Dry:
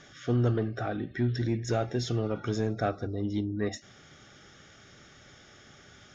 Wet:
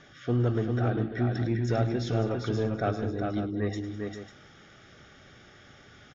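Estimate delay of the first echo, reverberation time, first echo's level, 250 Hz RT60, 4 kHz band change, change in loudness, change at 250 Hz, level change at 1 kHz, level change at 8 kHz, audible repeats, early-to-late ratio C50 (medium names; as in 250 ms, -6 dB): 105 ms, no reverb, -14.5 dB, no reverb, -1.5 dB, +1.5 dB, +1.5 dB, +1.5 dB, no reading, 4, no reverb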